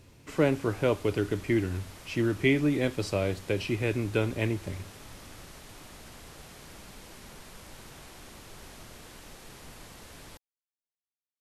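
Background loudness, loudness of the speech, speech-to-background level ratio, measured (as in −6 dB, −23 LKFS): −48.0 LKFS, −29.0 LKFS, 19.0 dB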